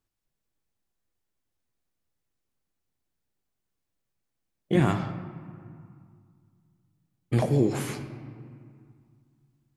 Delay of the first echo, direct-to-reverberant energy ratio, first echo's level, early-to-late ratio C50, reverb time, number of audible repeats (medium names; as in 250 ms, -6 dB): no echo, 8.0 dB, no echo, 9.5 dB, 2.2 s, no echo